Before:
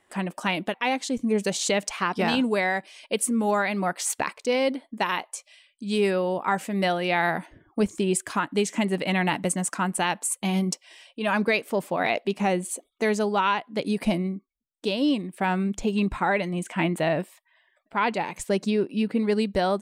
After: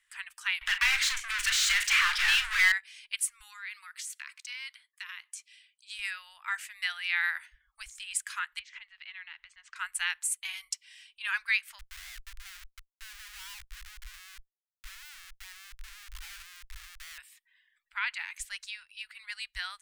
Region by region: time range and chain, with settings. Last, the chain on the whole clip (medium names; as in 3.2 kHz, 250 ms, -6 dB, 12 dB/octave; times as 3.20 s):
0.61–2.72 s: overdrive pedal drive 34 dB, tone 2.9 kHz, clips at -11.5 dBFS + doubling 38 ms -9.5 dB
3.40–5.99 s: steep high-pass 940 Hz + compression 10:1, threshold -32 dBFS
8.59–9.76 s: low-pass 4.2 kHz 24 dB/octave + compression 4:1, threshold -34 dBFS
11.79–17.18 s: low-pass 1.1 kHz + compression 2:1, threshold -35 dBFS + Schmitt trigger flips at -38.5 dBFS
whole clip: inverse Chebyshev band-stop 180–430 Hz, stop band 80 dB; dynamic bell 1.7 kHz, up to +4 dB, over -40 dBFS, Q 1.2; trim -3.5 dB